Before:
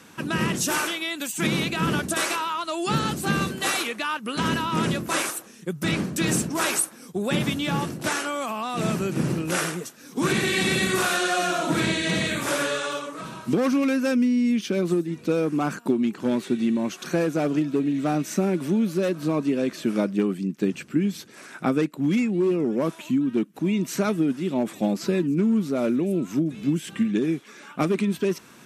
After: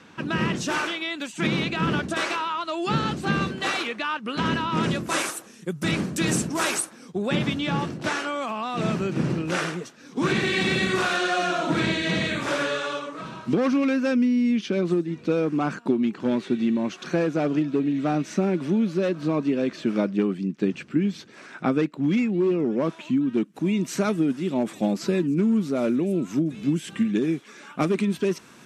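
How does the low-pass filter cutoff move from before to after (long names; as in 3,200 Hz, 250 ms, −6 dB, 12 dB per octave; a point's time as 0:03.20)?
0:04.69 4,400 Hz
0:05.13 9,900 Hz
0:06.68 9,900 Hz
0:07.13 4,900 Hz
0:23.15 4,900 Hz
0:23.55 9,800 Hz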